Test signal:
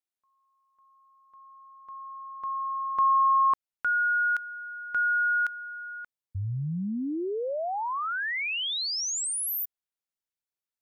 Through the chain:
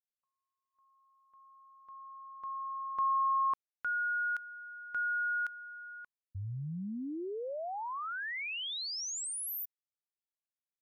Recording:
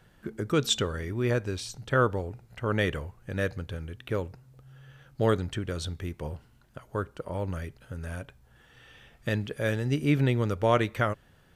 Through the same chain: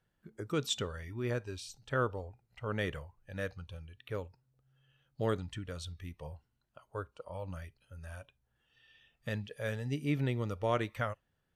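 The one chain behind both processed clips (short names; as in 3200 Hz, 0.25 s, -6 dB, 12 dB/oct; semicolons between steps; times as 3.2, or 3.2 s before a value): spectral noise reduction 12 dB; gain -8 dB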